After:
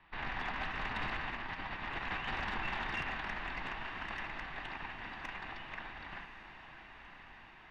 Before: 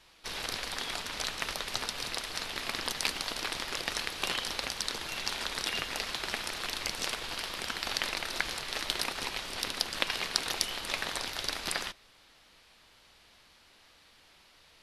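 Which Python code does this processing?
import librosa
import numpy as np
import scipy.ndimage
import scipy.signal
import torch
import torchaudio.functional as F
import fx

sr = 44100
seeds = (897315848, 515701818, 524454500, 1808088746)

y = fx.doppler_pass(x, sr, speed_mps=7, closest_m=5.3, pass_at_s=3.12)
y = scipy.signal.sosfilt(scipy.signal.butter(4, 2300.0, 'lowpass', fs=sr, output='sos'), y)
y = fx.peak_eq(y, sr, hz=500.0, db=-7.5, octaves=0.74)
y = y + 0.3 * np.pad(y, (int(1.1 * sr / 1000.0), 0))[:len(y)]
y = fx.over_compress(y, sr, threshold_db=-48.0, ratio=-1.0)
y = 10.0 ** (-35.5 / 20.0) * np.tanh(y / 10.0 ** (-35.5 / 20.0))
y = fx.comb_fb(y, sr, f0_hz=780.0, decay_s=0.33, harmonics='all', damping=0.0, mix_pct=50)
y = fx.stretch_vocoder(y, sr, factor=0.52)
y = fx.echo_diffused(y, sr, ms=1035, feedback_pct=68, wet_db=-11.5)
y = y * 10.0 ** (18.0 / 20.0)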